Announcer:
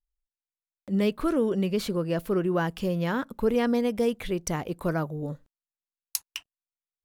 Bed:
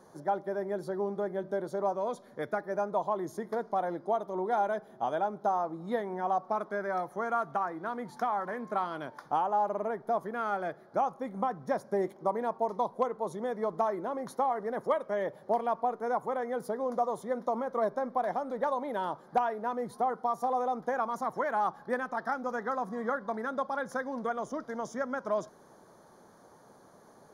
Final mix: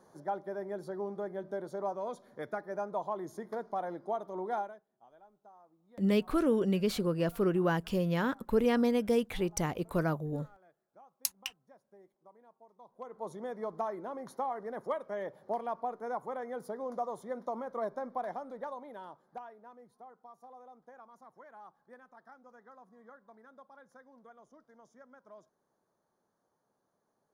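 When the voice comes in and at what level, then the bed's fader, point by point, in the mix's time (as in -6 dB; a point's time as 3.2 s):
5.10 s, -3.0 dB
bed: 4.58 s -5 dB
4.86 s -29 dB
12.75 s -29 dB
13.24 s -6 dB
18.22 s -6 dB
19.97 s -23 dB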